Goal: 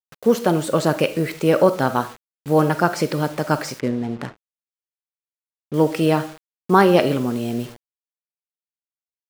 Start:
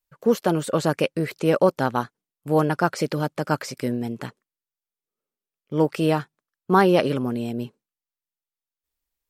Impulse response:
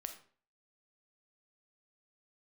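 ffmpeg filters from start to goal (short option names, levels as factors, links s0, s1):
-filter_complex "[0:a]asplit=2[s0][s1];[1:a]atrim=start_sample=2205,afade=t=out:st=0.39:d=0.01,atrim=end_sample=17640[s2];[s1][s2]afir=irnorm=-1:irlink=0,volume=2.11[s3];[s0][s3]amix=inputs=2:normalize=0,acrusher=bits=5:mix=0:aa=0.000001,asettb=1/sr,asplit=3[s4][s5][s6];[s4]atrim=end=3.794[s7];[s5]atrim=start=3.79:end=5.74,asetpts=PTS-STARTPTS,afade=t=in:d=0.004:c=qsin,afade=t=out:st=1.946:d=0.004:c=qsin,adynamicsmooth=sensitivity=4:basefreq=740[s8];[s6]atrim=start=5.736[s9];[s7][s8]acrossfade=d=0.004:c1=hsin:c2=qsin[s10];[s10][s9]acrossfade=d=0.004:c1=qsin:c2=hsin,volume=0.596"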